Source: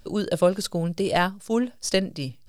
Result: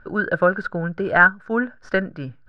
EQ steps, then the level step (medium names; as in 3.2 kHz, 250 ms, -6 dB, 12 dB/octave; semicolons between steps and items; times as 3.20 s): resonant low-pass 1.5 kHz, resonance Q 15; 0.0 dB